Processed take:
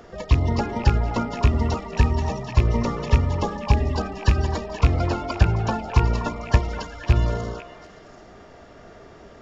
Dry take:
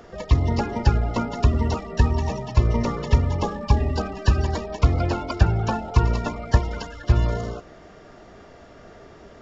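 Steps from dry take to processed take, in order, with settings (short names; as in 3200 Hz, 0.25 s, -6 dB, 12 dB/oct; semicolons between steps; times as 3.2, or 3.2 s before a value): rattling part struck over -12 dBFS, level -16 dBFS; delay with a stepping band-pass 0.247 s, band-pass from 890 Hz, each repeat 1.4 oct, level -6.5 dB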